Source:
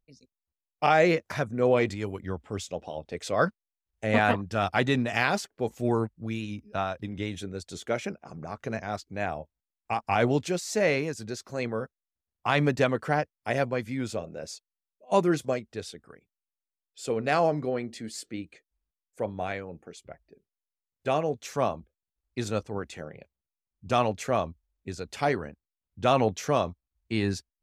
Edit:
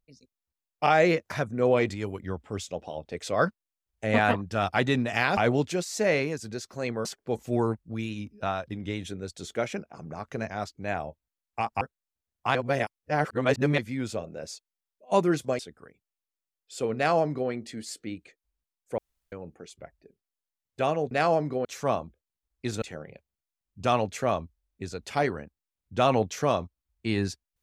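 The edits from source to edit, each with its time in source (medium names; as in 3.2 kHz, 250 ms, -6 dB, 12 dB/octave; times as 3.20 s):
10.13–11.81 s: move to 5.37 s
12.55–13.78 s: reverse
15.59–15.86 s: delete
17.23–17.77 s: copy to 21.38 s
19.25–19.59 s: room tone
22.55–22.88 s: delete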